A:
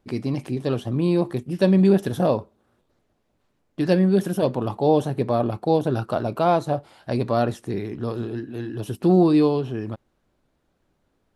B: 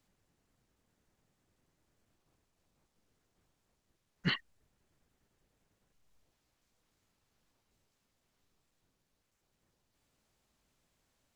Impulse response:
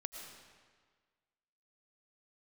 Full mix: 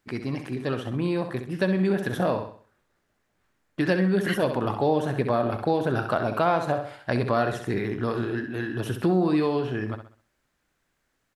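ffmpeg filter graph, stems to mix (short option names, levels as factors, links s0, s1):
-filter_complex "[0:a]agate=range=0.501:threshold=0.00562:ratio=16:detection=peak,dynaudnorm=f=530:g=9:m=3.76,volume=0.562,asplit=2[s0][s1];[s1]volume=0.355[s2];[1:a]highshelf=f=5100:g=6,volume=0.596[s3];[s2]aecho=0:1:65|130|195|260|325:1|0.36|0.13|0.0467|0.0168[s4];[s0][s3][s4]amix=inputs=3:normalize=0,equalizer=f=1700:w=1.1:g=11,acompressor=threshold=0.0891:ratio=2.5"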